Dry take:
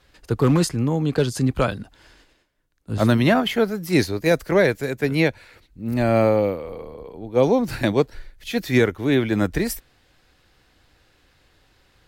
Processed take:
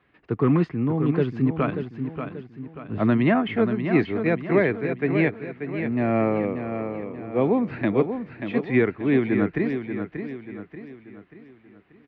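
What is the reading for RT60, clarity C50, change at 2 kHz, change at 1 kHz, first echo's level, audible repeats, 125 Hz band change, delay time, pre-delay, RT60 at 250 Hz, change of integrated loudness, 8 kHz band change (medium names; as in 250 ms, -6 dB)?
no reverb, no reverb, -3.0 dB, -3.0 dB, -8.0 dB, 4, -3.5 dB, 585 ms, no reverb, no reverb, -3.0 dB, under -35 dB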